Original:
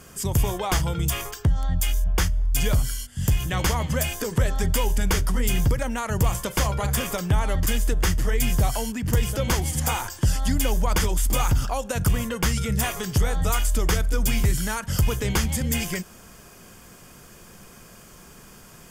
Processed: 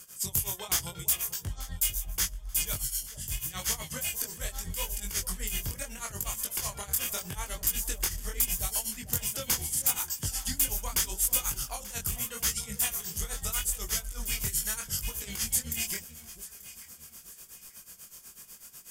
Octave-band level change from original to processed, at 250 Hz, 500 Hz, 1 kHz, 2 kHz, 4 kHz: -17.5 dB, -16.5 dB, -13.5 dB, -9.5 dB, -4.5 dB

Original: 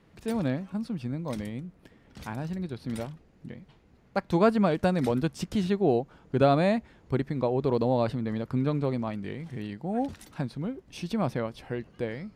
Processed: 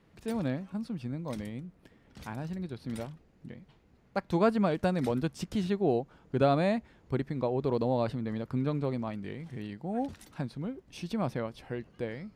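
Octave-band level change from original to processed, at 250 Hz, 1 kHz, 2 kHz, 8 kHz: -3.5 dB, -3.5 dB, -3.5 dB, no reading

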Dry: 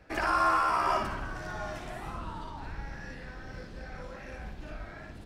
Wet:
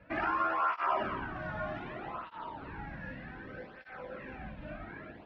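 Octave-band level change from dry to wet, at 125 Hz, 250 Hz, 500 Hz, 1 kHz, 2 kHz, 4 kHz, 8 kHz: -4.0 dB, -1.0 dB, -2.0 dB, -4.0 dB, -2.5 dB, -8.0 dB, under -25 dB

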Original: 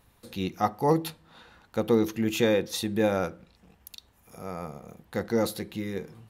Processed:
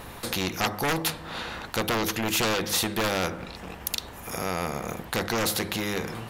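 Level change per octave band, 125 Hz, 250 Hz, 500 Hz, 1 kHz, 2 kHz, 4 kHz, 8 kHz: +0.5 dB, -2.5 dB, -3.5 dB, +2.5 dB, +8.5 dB, +9.0 dB, +10.5 dB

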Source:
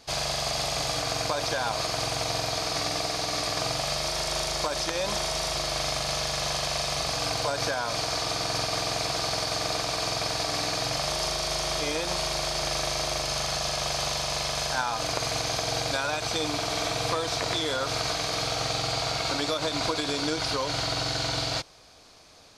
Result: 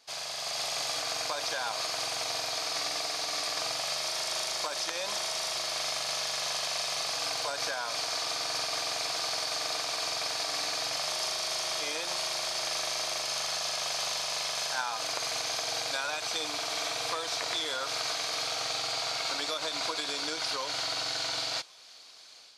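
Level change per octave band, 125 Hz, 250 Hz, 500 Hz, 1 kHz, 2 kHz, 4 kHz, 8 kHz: -20.0 dB, -13.5 dB, -8.0 dB, -5.5 dB, -3.0 dB, -2.5 dB, -2.0 dB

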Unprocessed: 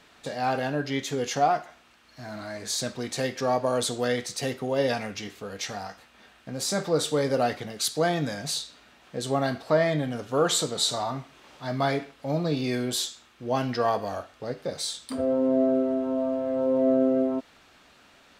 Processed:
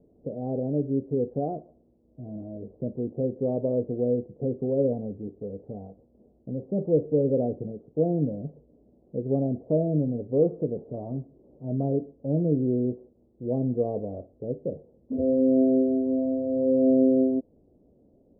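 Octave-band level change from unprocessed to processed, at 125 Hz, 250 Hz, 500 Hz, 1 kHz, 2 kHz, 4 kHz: +3.5 dB, +3.5 dB, 0.0 dB, -14.0 dB, under -40 dB, under -40 dB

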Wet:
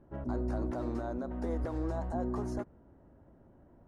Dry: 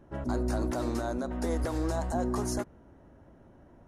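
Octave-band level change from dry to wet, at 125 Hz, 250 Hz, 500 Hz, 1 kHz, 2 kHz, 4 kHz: -3.5 dB, -4.0 dB, -4.5 dB, -5.5 dB, -8.5 dB, under -15 dB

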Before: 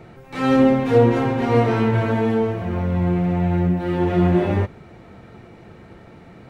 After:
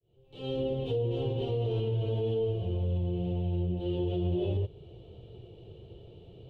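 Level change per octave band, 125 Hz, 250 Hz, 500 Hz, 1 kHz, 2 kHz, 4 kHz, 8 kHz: -9.0 dB, -16.5 dB, -11.5 dB, -22.5 dB, under -25 dB, -7.0 dB, no reading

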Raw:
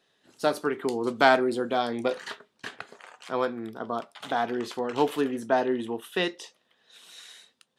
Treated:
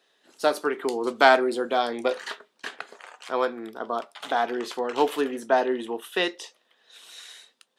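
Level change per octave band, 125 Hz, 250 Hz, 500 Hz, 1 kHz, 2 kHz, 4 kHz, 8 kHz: under -10 dB, -1.0 dB, +2.0 dB, +3.0 dB, +3.0 dB, +3.0 dB, +3.0 dB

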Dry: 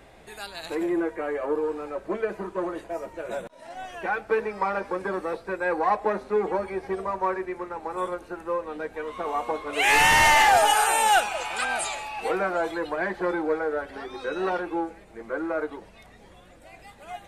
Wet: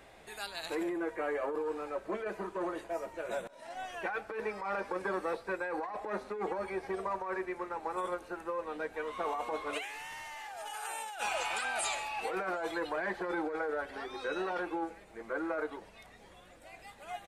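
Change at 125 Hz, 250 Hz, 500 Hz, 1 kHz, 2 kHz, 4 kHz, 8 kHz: -12.5 dB, -8.0 dB, -9.0 dB, -13.0 dB, -12.5 dB, -14.0 dB, -13.5 dB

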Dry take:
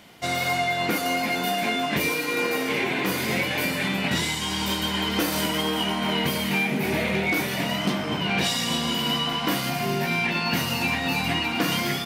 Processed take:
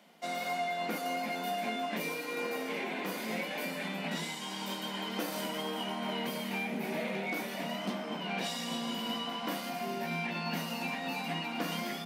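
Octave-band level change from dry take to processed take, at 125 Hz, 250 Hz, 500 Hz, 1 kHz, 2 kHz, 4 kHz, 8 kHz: -14.0 dB, -10.5 dB, -8.5 dB, -8.5 dB, -12.5 dB, -12.5 dB, -13.0 dB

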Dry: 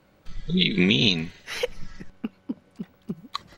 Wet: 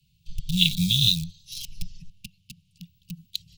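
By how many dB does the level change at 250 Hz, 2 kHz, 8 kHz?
-5.0 dB, -8.5 dB, +8.0 dB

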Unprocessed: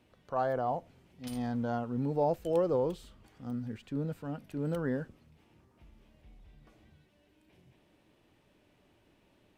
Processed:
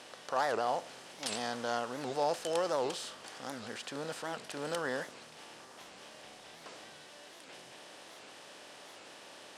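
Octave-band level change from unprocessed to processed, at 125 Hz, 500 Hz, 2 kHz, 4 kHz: -14.0 dB, -2.5 dB, +8.0 dB, +14.5 dB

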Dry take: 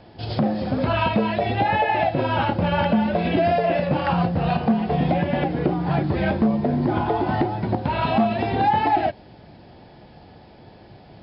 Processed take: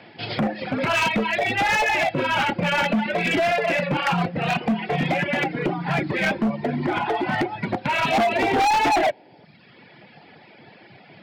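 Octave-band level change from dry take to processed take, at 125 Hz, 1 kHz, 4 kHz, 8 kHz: -5.5 dB, -0.5 dB, +5.5 dB, no reading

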